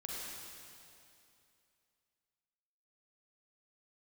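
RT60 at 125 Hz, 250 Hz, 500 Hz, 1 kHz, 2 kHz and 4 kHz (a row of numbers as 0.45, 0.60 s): 2.7, 2.7, 2.7, 2.6, 2.5, 2.5 s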